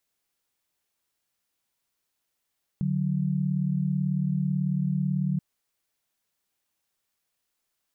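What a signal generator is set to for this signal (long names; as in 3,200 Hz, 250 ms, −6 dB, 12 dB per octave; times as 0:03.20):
held notes D3/F#3 sine, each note −26 dBFS 2.58 s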